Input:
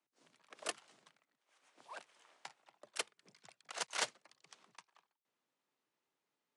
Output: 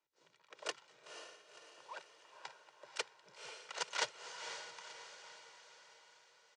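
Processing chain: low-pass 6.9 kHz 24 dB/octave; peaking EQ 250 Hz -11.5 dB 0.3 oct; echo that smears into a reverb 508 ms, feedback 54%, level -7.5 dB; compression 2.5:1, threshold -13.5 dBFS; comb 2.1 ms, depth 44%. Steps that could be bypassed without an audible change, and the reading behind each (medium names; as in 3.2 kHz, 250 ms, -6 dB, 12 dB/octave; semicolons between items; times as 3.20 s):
compression, threshold -13.5 dBFS: peak at its input -22.5 dBFS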